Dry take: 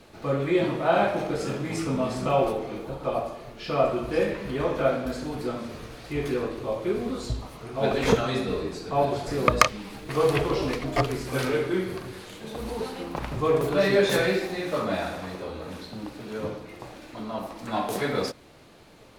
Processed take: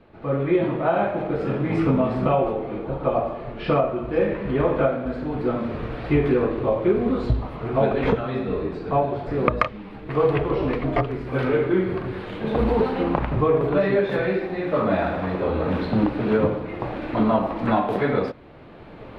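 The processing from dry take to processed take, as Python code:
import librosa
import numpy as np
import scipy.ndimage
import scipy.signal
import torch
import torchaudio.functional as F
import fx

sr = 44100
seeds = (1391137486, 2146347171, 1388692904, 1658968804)

y = fx.recorder_agc(x, sr, target_db=-9.0, rise_db_per_s=10.0, max_gain_db=30)
y = fx.air_absorb(y, sr, metres=490.0)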